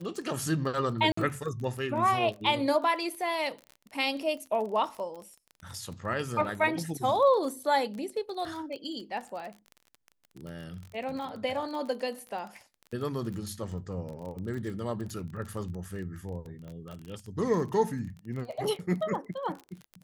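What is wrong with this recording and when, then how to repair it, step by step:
crackle 26/s -36 dBFS
1.12–1.17 gap 54 ms
16.68 pop -33 dBFS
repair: de-click; interpolate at 1.12, 54 ms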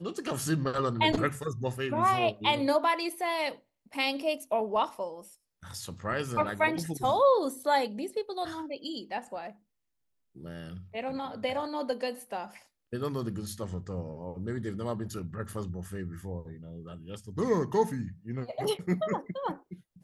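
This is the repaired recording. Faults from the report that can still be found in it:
16.68 pop

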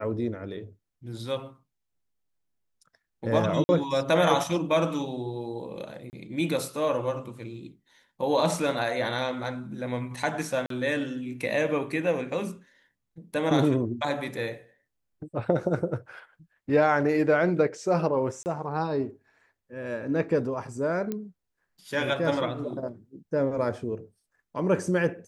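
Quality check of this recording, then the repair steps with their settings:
3.64–3.69 gap 50 ms
6.1–6.13 gap 29 ms
10.66–10.7 gap 43 ms
18.43–18.46 gap 29 ms
21.12 pop -18 dBFS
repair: de-click; interpolate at 3.64, 50 ms; interpolate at 6.1, 29 ms; interpolate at 10.66, 43 ms; interpolate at 18.43, 29 ms

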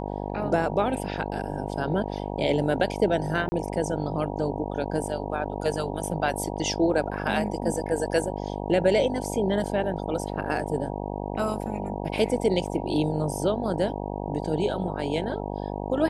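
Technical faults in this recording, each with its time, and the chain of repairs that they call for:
buzz 50 Hz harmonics 19 -32 dBFS
3.49–3.52 gap 30 ms
12.67 gap 4.5 ms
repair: de-hum 50 Hz, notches 19; interpolate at 3.49, 30 ms; interpolate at 12.67, 4.5 ms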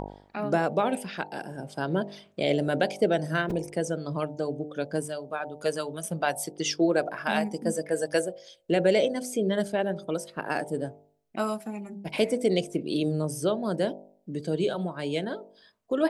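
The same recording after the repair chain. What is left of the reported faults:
none

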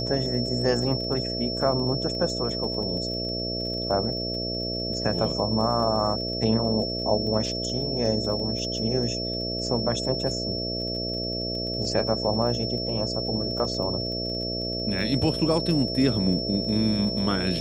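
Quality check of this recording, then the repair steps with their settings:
buzz 60 Hz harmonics 11 -32 dBFS
crackle 28/s -34 dBFS
tone 5400 Hz -30 dBFS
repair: de-click; de-hum 60 Hz, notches 11; notch 5400 Hz, Q 30

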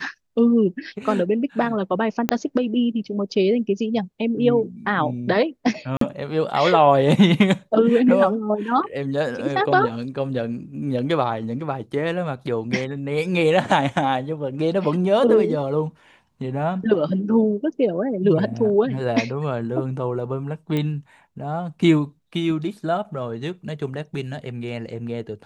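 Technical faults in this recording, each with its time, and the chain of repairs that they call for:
2.29 pop -4 dBFS
5.97–6.01 gap 43 ms
20.77 pop -13 dBFS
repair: de-click; interpolate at 5.97, 43 ms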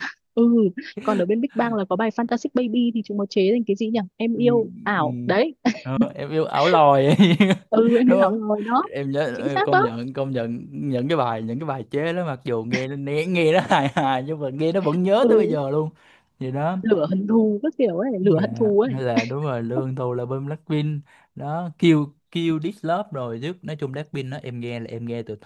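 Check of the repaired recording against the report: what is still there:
2.29 pop

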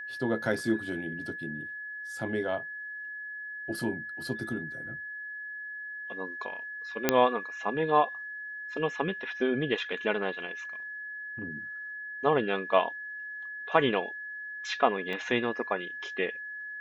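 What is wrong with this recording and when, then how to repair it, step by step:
tone 1700 Hz -37 dBFS
7.09 pop -6 dBFS
15.13 gap 2.3 ms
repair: de-click; notch 1700 Hz, Q 30; interpolate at 15.13, 2.3 ms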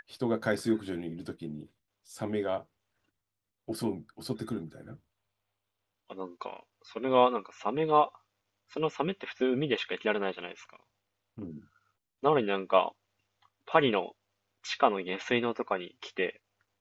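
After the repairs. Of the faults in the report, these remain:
none

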